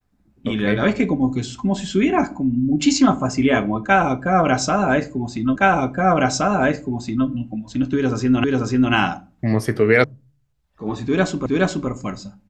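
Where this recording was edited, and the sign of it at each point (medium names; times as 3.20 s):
5.56 s: repeat of the last 1.72 s
8.44 s: repeat of the last 0.49 s
10.04 s: sound stops dead
11.46 s: repeat of the last 0.42 s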